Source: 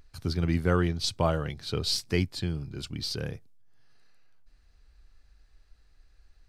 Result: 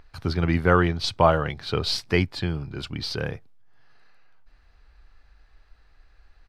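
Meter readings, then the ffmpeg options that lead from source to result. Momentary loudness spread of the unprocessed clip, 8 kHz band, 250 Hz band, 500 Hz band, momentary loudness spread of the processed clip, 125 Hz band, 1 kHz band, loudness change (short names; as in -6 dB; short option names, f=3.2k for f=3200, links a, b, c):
10 LU, -2.5 dB, +4.0 dB, +7.0 dB, 12 LU, +3.5 dB, +10.5 dB, +5.0 dB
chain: -af "firequalizer=gain_entry='entry(220,0);entry(860,8);entry(7100,-8)':delay=0.05:min_phase=1,volume=3.5dB"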